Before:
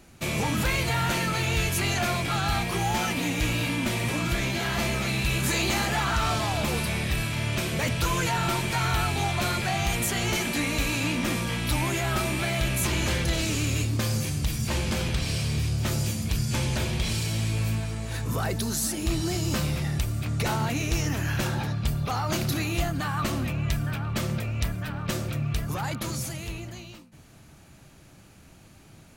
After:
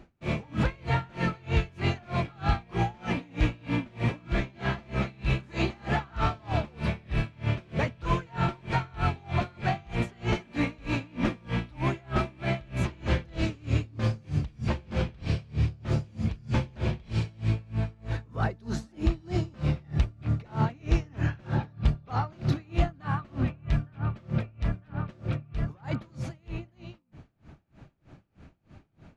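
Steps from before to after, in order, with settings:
head-to-tape spacing loss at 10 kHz 30 dB
tremolo with a sine in dB 3.2 Hz, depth 29 dB
level +5 dB

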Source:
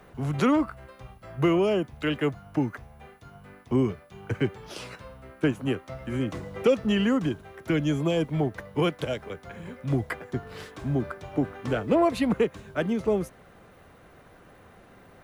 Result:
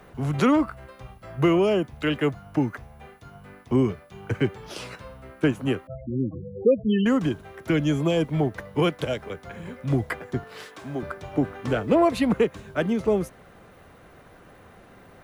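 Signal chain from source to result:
0:05.87–0:07.06: spectral peaks only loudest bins 8
0:10.44–0:11.03: high-pass filter 540 Hz 6 dB per octave
level +2.5 dB

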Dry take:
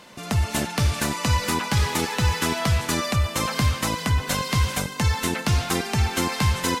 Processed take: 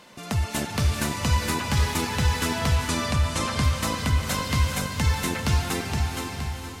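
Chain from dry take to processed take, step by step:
fade-out on the ending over 1.28 s
0:02.76–0:03.63: Butterworth low-pass 11,000 Hz
feedback delay with all-pass diffusion 468 ms, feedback 42%, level −6.5 dB
level −3 dB

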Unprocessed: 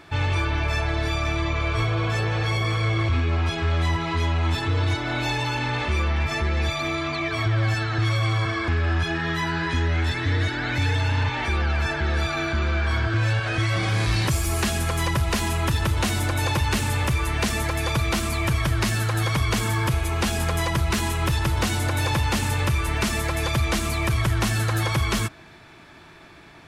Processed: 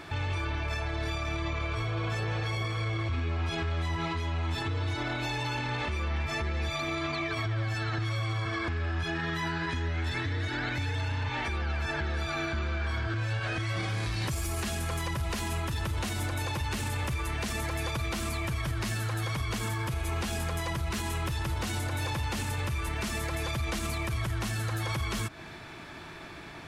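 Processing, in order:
downward compressor, threshold −29 dBFS, peak gain reduction 11 dB
brickwall limiter −26.5 dBFS, peak gain reduction 6 dB
level +3 dB

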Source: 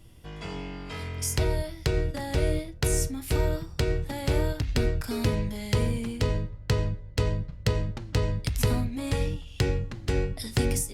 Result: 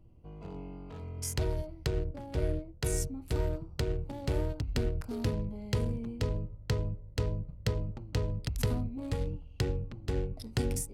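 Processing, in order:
adaptive Wiener filter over 25 samples
0:02.04–0:03.05: multiband upward and downward expander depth 40%
level −5.5 dB

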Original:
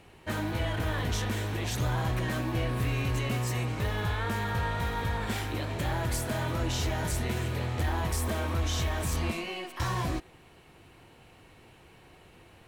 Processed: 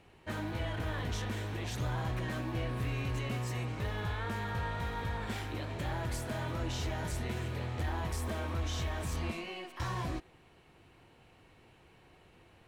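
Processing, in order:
high-shelf EQ 8,500 Hz −8 dB
level −5.5 dB

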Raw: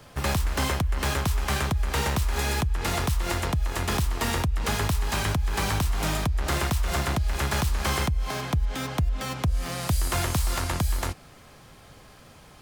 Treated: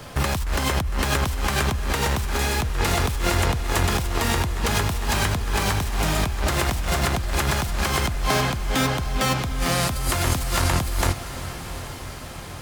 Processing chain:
compressor whose output falls as the input rises −29 dBFS, ratio −1
on a send: feedback delay with all-pass diffusion 783 ms, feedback 58%, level −12.5 dB
on the sum: level +6.5 dB

